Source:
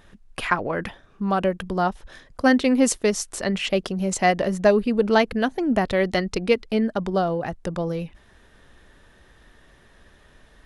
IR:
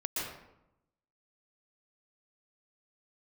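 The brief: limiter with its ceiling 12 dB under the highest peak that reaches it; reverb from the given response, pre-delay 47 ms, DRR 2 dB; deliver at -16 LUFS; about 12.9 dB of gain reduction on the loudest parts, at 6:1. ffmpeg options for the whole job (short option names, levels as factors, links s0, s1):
-filter_complex "[0:a]acompressor=threshold=0.0447:ratio=6,alimiter=level_in=1.06:limit=0.0631:level=0:latency=1,volume=0.944,asplit=2[s0][s1];[1:a]atrim=start_sample=2205,adelay=47[s2];[s1][s2]afir=irnorm=-1:irlink=0,volume=0.473[s3];[s0][s3]amix=inputs=2:normalize=0,volume=6.31"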